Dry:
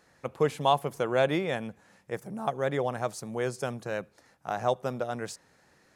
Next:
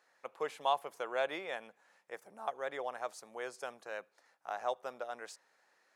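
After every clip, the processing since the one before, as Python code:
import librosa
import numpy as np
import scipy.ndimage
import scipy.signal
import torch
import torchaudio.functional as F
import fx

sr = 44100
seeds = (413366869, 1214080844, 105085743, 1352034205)

y = scipy.signal.sosfilt(scipy.signal.butter(2, 630.0, 'highpass', fs=sr, output='sos'), x)
y = fx.high_shelf(y, sr, hz=4600.0, db=-6.0)
y = y * 10.0 ** (-5.5 / 20.0)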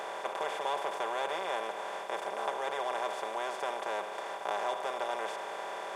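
y = fx.bin_compress(x, sr, power=0.2)
y = y + 0.65 * np.pad(y, (int(5.1 * sr / 1000.0), 0))[:len(y)]
y = y * 10.0 ** (-7.0 / 20.0)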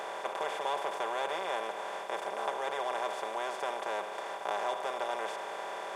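y = x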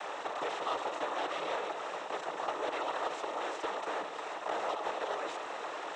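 y = fx.noise_vocoder(x, sr, seeds[0], bands=12)
y = 10.0 ** (-22.5 / 20.0) * np.tanh(y / 10.0 ** (-22.5 / 20.0))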